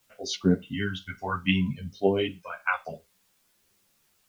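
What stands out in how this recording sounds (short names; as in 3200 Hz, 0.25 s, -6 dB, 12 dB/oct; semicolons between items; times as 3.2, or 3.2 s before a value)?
phasing stages 2, 0.61 Hz, lowest notch 330–1300 Hz; a quantiser's noise floor 12-bit, dither triangular; a shimmering, thickened sound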